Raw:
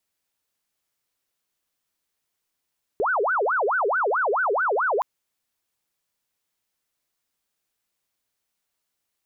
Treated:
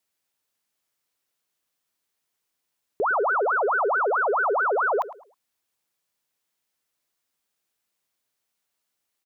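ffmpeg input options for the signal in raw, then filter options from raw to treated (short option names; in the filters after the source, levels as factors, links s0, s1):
-f lavfi -i "aevalsrc='0.106*sin(2*PI*(962.5*t-567.5/(2*PI*4.6)*sin(2*PI*4.6*t)))':d=2.02:s=44100"
-filter_complex "[0:a]lowshelf=f=86:g=-8.5,asplit=2[s0][s1];[s1]adelay=107,lowpass=f=1200:p=1,volume=0.2,asplit=2[s2][s3];[s3]adelay=107,lowpass=f=1200:p=1,volume=0.31,asplit=2[s4][s5];[s5]adelay=107,lowpass=f=1200:p=1,volume=0.31[s6];[s0][s2][s4][s6]amix=inputs=4:normalize=0"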